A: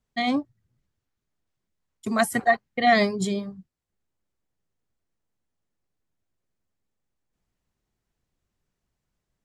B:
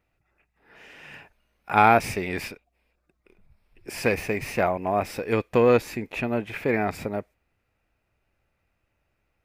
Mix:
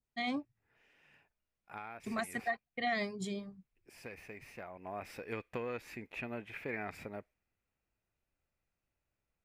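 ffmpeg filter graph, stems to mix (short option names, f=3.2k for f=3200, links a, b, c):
-filter_complex "[0:a]volume=-12.5dB[a];[1:a]adynamicequalizer=threshold=0.0224:dfrequency=1600:dqfactor=1:tfrequency=1600:tqfactor=1:attack=5:release=100:ratio=0.375:range=2:mode=boostabove:tftype=bell,acompressor=threshold=-20dB:ratio=12,volume=-15.5dB,afade=t=in:st=4.67:d=0.42:silence=0.446684[b];[a][b]amix=inputs=2:normalize=0,adynamicequalizer=threshold=0.00251:dfrequency=2300:dqfactor=1.3:tfrequency=2300:tqfactor=1.3:attack=5:release=100:ratio=0.375:range=2.5:mode=boostabove:tftype=bell,alimiter=limit=-24dB:level=0:latency=1:release=406"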